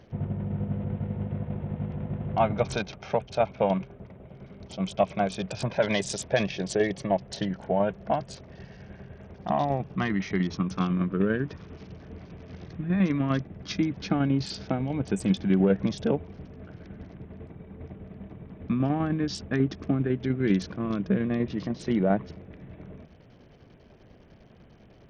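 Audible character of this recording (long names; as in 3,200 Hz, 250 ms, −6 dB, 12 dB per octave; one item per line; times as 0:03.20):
tremolo saw down 10 Hz, depth 45%
SBC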